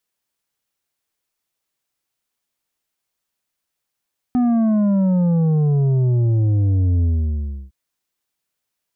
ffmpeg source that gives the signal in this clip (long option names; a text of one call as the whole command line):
ffmpeg -f lavfi -i "aevalsrc='0.188*clip((3.36-t)/0.68,0,1)*tanh(2.24*sin(2*PI*250*3.36/log(65/250)*(exp(log(65/250)*t/3.36)-1)))/tanh(2.24)':duration=3.36:sample_rate=44100" out.wav